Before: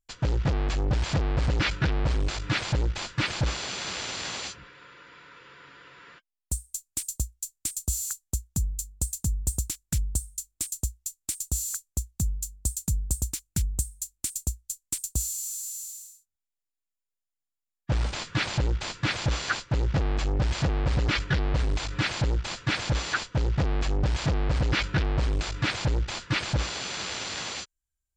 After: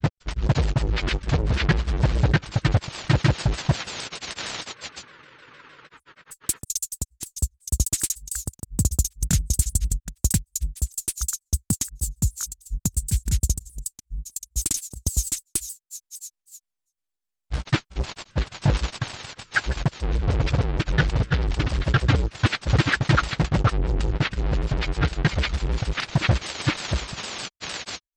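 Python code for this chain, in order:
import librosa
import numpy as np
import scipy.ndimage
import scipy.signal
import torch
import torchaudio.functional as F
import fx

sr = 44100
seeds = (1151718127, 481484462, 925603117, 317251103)

y = fx.transient(x, sr, attack_db=5, sustain_db=-12)
y = fx.granulator(y, sr, seeds[0], grain_ms=100.0, per_s=20.0, spray_ms=694.0, spread_st=0)
y = fx.vibrato_shape(y, sr, shape='saw_down', rate_hz=6.5, depth_cents=250.0)
y = y * librosa.db_to_amplitude(3.5)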